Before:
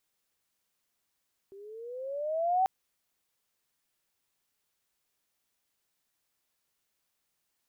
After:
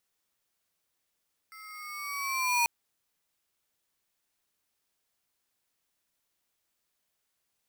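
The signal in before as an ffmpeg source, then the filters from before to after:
-f lavfi -i "aevalsrc='pow(10,(-21.5+24.5*(t/1.14-1))/20)*sin(2*PI*386*1.14/(12*log(2)/12)*(exp(12*log(2)/12*t/1.14)-1))':d=1.14:s=44100"
-af "aeval=exprs='val(0)*sgn(sin(2*PI*1700*n/s))':c=same"

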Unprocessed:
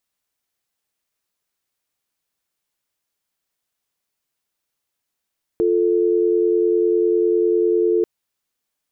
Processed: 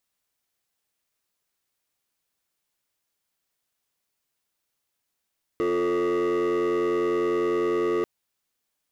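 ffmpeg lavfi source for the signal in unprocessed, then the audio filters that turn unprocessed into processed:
-f lavfi -i "aevalsrc='0.141*(sin(2*PI*350*t)+sin(2*PI*440*t))':d=2.44:s=44100"
-af "volume=13.3,asoftclip=hard,volume=0.075"

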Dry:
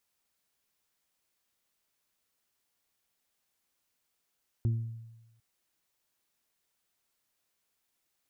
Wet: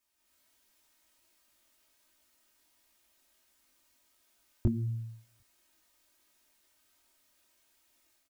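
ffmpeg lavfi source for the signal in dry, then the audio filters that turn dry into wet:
-f lavfi -i "aevalsrc='0.0708*pow(10,-3*t/1.06)*sin(2*PI*114*t)+0.0168*pow(10,-3*t/0.61)*sin(2*PI*228*t)+0.00944*pow(10,-3*t/0.44)*sin(2*PI*342*t)':d=0.75:s=44100"
-af "aecho=1:1:3.2:0.88,dynaudnorm=f=160:g=3:m=3.16,flanger=delay=18:depth=4.5:speed=1.4"

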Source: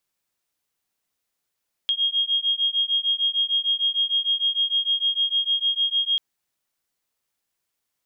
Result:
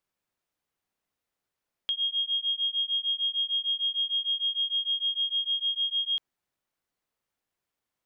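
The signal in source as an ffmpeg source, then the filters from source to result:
-f lavfi -i "aevalsrc='0.0708*(sin(2*PI*3250*t)+sin(2*PI*3256.6*t))':d=4.29:s=44100"
-af "highshelf=f=2900:g=-10.5"

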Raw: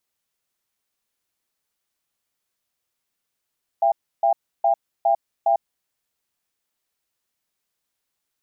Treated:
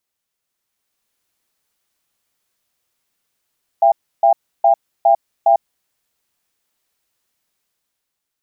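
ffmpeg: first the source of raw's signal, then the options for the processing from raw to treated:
-f lavfi -i "aevalsrc='0.133*(sin(2*PI*678*t)+sin(2*PI*799*t))*clip(min(mod(t,0.41),0.1-mod(t,0.41))/0.005,0,1)':d=1.83:s=44100"
-af "dynaudnorm=f=180:g=9:m=2.24"

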